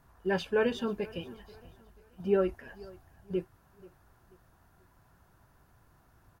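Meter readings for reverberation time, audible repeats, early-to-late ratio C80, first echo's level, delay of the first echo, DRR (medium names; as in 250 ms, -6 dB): no reverb, 2, no reverb, -22.0 dB, 485 ms, no reverb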